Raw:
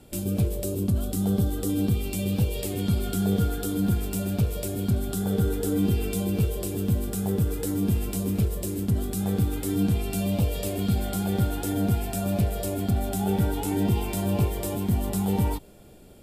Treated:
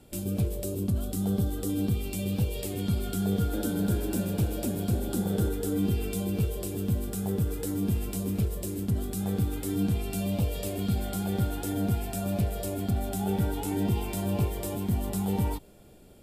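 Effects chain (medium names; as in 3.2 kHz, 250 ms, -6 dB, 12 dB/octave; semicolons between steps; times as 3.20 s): 3.28–5.49 s: frequency-shifting echo 251 ms, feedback 34%, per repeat +120 Hz, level -6 dB; trim -3.5 dB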